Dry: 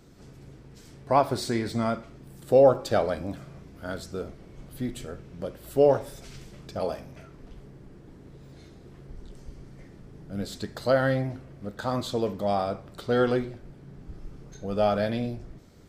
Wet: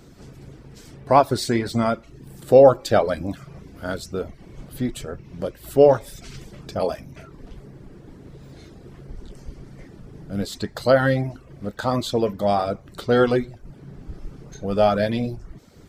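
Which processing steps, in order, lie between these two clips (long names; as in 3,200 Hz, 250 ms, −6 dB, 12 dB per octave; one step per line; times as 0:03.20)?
reverb reduction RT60 0.51 s
level +6.5 dB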